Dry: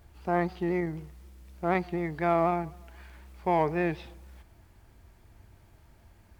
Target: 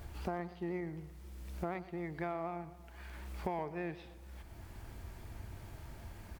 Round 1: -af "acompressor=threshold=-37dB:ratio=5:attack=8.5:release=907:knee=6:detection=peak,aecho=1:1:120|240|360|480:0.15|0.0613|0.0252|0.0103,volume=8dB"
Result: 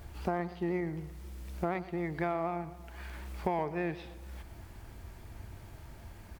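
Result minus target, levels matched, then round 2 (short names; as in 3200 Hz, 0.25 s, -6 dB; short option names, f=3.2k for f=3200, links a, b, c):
compressor: peak gain reduction -6 dB
-af "acompressor=threshold=-44.5dB:ratio=5:attack=8.5:release=907:knee=6:detection=peak,aecho=1:1:120|240|360|480:0.15|0.0613|0.0252|0.0103,volume=8dB"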